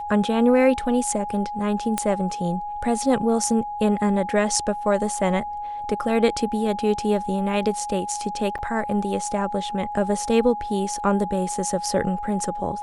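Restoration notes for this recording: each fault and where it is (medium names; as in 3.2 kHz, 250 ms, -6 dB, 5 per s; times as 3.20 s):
whine 830 Hz -28 dBFS
1.98 s: pop -8 dBFS
8.58–8.59 s: dropout 8 ms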